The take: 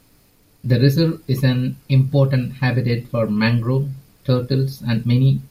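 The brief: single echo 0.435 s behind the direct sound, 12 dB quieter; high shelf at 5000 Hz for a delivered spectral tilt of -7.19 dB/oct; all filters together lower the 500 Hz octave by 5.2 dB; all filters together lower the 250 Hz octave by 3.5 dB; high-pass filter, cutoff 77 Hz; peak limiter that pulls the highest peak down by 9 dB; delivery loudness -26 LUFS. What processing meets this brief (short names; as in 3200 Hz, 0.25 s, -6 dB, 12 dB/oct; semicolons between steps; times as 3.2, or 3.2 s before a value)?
HPF 77 Hz; bell 250 Hz -3.5 dB; bell 500 Hz -5 dB; high shelf 5000 Hz -7 dB; limiter -15.5 dBFS; echo 0.435 s -12 dB; gain -1.5 dB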